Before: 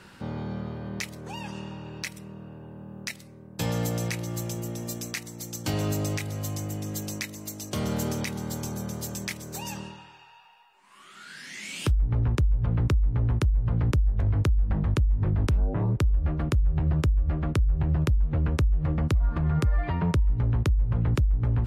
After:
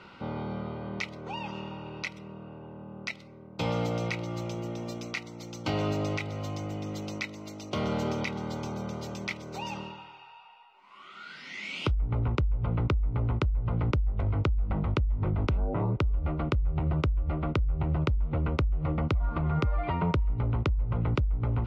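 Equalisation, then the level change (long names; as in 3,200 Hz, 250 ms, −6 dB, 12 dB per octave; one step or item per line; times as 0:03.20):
Butterworth band-reject 1,700 Hz, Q 4.7
high-frequency loss of the air 240 metres
low-shelf EQ 300 Hz −10 dB
+5.0 dB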